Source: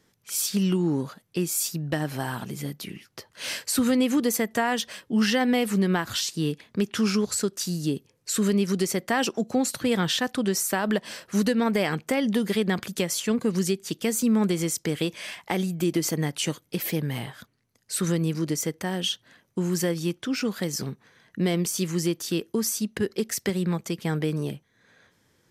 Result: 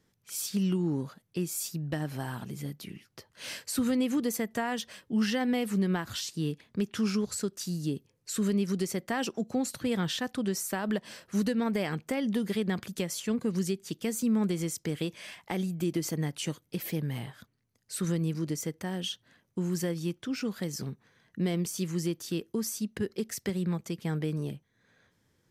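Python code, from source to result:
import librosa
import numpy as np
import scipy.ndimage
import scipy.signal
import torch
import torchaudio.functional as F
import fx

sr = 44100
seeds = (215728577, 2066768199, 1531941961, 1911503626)

y = fx.low_shelf(x, sr, hz=220.0, db=6.5)
y = y * 10.0 ** (-8.0 / 20.0)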